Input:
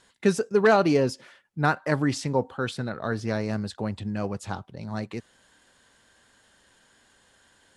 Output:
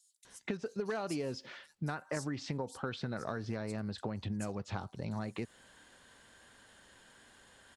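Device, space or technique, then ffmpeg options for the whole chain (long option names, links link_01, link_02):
serial compression, peaks first: -filter_complex "[0:a]acompressor=threshold=-29dB:ratio=6,acompressor=threshold=-36dB:ratio=3,acrossover=split=5700[link_01][link_02];[link_01]adelay=250[link_03];[link_03][link_02]amix=inputs=2:normalize=0,asettb=1/sr,asplit=3[link_04][link_05][link_06];[link_04]atrim=end=0.574[link_07];[link_05]atrim=start=0.57:end=1.95,asetpts=PTS-STARTPTS,afade=type=in:duration=0.004:curve=qsin,afade=type=out:start_time=1.376:duration=0.004:curve=qsin,adynamicequalizer=threshold=0.00112:dfrequency=2800:dqfactor=0.7:tfrequency=2800:tqfactor=0.7:attack=5:release=100:ratio=0.375:range=2.5:mode=boostabove:tftype=highshelf[link_08];[link_06]atrim=start=1.946[link_09];[link_07][link_08]acrossfade=duration=0.004:curve1=hsin:curve2=qsin[link_10];[link_10][link_09]acrossfade=duration=0.004:curve1=qsin:curve2=hsin,volume=1dB"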